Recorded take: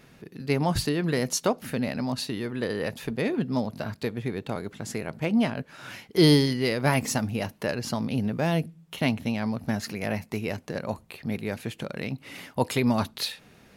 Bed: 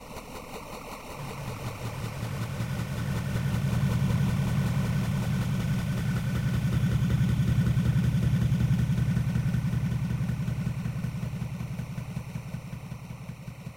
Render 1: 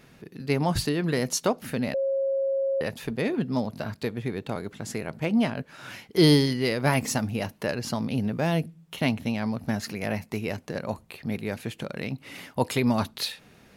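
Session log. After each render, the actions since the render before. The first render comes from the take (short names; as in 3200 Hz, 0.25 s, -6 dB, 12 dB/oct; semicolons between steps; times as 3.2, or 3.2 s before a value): 1.94–2.81 bleep 543 Hz -22.5 dBFS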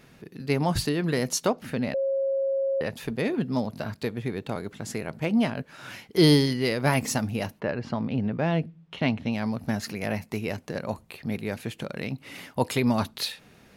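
1.5–2.94 high shelf 7800 Hz -11.5 dB; 7.59–9.31 LPF 2100 Hz -> 4300 Hz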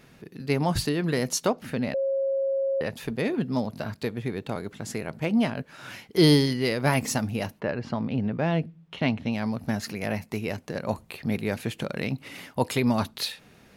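10.86–12.28 gain +3 dB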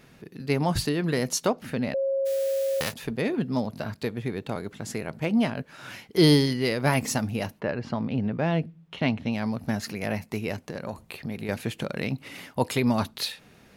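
2.25–2.92 spectral whitening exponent 0.3; 10.63–11.49 compressor 4:1, threshold -29 dBFS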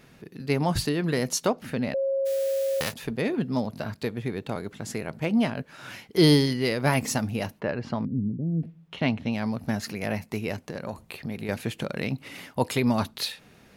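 8.05–8.63 inverse Chebyshev low-pass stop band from 1100 Hz, stop band 60 dB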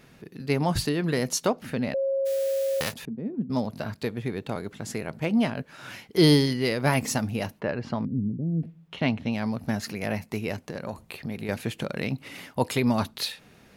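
3.05–3.5 band-pass 210 Hz, Q 2.3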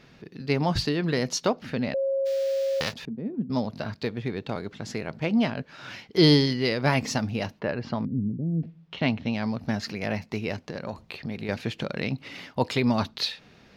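resonant high shelf 7000 Hz -12 dB, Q 1.5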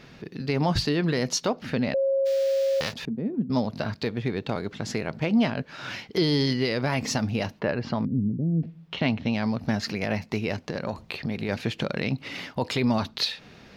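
in parallel at -2 dB: compressor, threshold -33 dBFS, peak gain reduction 17.5 dB; on the sum: limiter -14 dBFS, peak gain reduction 8 dB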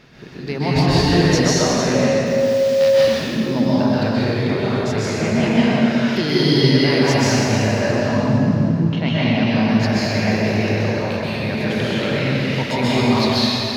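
plate-style reverb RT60 3.2 s, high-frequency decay 0.8×, pre-delay 0.115 s, DRR -9.5 dB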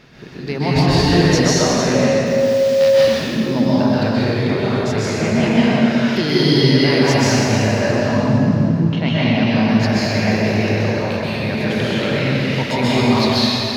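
gain +1.5 dB; limiter -2 dBFS, peak gain reduction 1.5 dB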